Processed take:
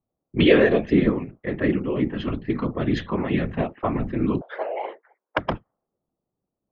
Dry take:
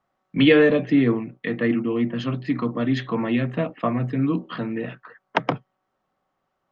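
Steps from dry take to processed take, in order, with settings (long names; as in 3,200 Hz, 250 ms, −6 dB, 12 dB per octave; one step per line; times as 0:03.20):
0:04.41–0:05.37: frequency shifter +340 Hz
random phases in short frames
low-pass that shuts in the quiet parts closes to 360 Hz, open at −17.5 dBFS
level −1 dB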